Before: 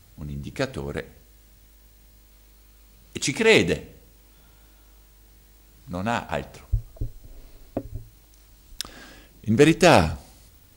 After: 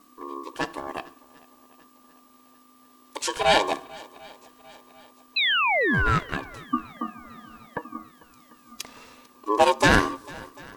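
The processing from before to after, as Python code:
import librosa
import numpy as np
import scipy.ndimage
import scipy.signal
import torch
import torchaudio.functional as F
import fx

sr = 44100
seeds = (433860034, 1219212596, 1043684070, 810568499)

y = fx.band_invert(x, sr, width_hz=500)
y = fx.spec_paint(y, sr, seeds[0], shape='fall', start_s=5.36, length_s=0.83, low_hz=530.0, high_hz=3400.0, level_db=-19.0)
y = fx.echo_swing(y, sr, ms=744, ratio=1.5, feedback_pct=44, wet_db=-23.0)
y = y * np.sin(2.0 * np.pi * 720.0 * np.arange(len(y)) / sr)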